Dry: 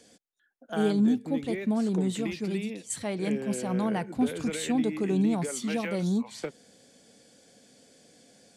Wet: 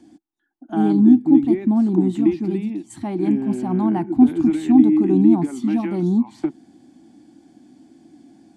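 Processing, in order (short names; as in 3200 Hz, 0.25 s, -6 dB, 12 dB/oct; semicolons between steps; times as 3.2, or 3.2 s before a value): EQ curve 200 Hz 0 dB, 330 Hz +15 dB, 480 Hz -23 dB, 790 Hz +3 dB, 1400 Hz -9 dB, 6100 Hz -16 dB; gain +7 dB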